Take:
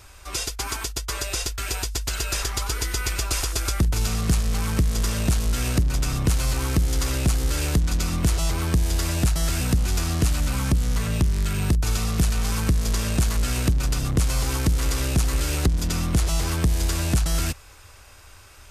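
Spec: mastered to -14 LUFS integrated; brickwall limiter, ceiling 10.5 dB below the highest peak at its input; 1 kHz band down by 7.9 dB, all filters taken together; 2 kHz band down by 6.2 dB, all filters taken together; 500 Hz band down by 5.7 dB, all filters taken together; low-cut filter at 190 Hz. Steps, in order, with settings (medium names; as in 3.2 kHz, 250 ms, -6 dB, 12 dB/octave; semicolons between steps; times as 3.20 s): high-pass 190 Hz; peaking EQ 500 Hz -5.5 dB; peaking EQ 1 kHz -7 dB; peaking EQ 2 kHz -6 dB; trim +19 dB; peak limiter -2.5 dBFS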